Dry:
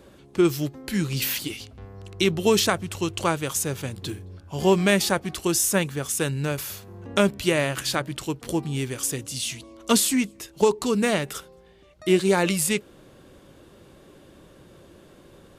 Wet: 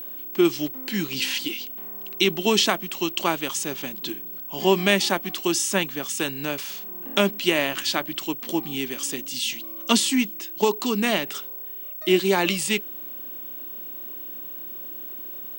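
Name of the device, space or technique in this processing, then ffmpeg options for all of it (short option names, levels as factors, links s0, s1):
old television with a line whistle: -af "highpass=f=210:w=0.5412,highpass=f=210:w=1.3066,equalizer=f=490:t=q:w=4:g=-9,equalizer=f=1400:t=q:w=4:g=-4,equalizer=f=3000:t=q:w=4:g=5,equalizer=f=7300:t=q:w=4:g=-3,lowpass=f=8200:w=0.5412,lowpass=f=8200:w=1.3066,aeval=exprs='val(0)+0.0178*sin(2*PI*15734*n/s)':c=same,volume=1.26"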